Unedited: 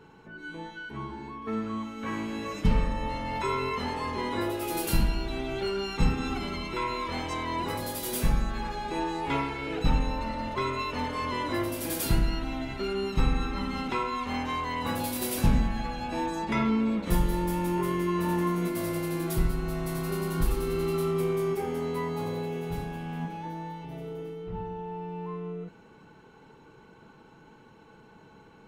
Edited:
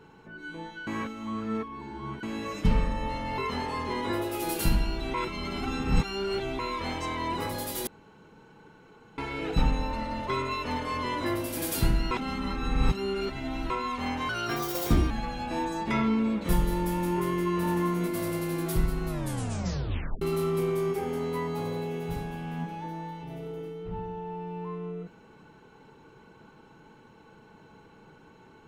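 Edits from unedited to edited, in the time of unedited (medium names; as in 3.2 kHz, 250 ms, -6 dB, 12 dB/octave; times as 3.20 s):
0.87–2.23 s: reverse
3.38–3.66 s: delete
5.42–6.87 s: reverse
8.15–9.46 s: room tone
12.39–13.98 s: reverse
14.57–15.72 s: speed 141%
19.69 s: tape stop 1.14 s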